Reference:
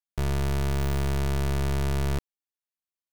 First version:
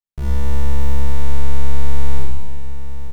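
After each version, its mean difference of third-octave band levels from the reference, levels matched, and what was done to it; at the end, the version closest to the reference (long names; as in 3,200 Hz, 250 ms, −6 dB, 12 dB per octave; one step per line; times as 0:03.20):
4.5 dB: low-shelf EQ 190 Hz +11.5 dB
single-tap delay 889 ms −12 dB
four-comb reverb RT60 1.4 s, combs from 31 ms, DRR −5 dB
level −7 dB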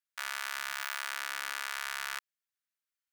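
16.0 dB: four-pole ladder high-pass 1,200 Hz, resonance 40%
level +8.5 dB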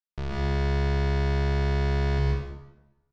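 6.0 dB: low-pass filter 5,200 Hz 24 dB per octave
on a send: single-tap delay 75 ms −13.5 dB
on the sum: dense smooth reverb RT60 1 s, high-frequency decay 0.75×, pre-delay 110 ms, DRR −3.5 dB
level −5 dB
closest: first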